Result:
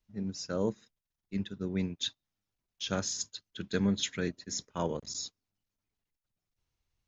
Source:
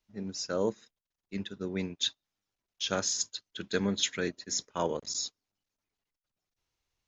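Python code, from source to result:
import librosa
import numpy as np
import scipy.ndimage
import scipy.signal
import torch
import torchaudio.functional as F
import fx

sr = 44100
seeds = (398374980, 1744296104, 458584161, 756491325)

y = fx.bass_treble(x, sr, bass_db=9, treble_db=-1)
y = y * 10.0 ** (-3.5 / 20.0)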